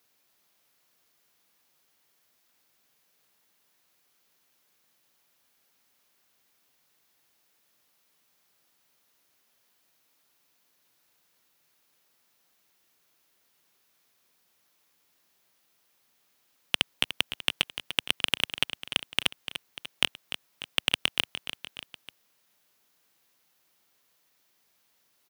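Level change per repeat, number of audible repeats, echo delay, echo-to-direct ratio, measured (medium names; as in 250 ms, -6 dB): -5.0 dB, 3, 296 ms, -9.5 dB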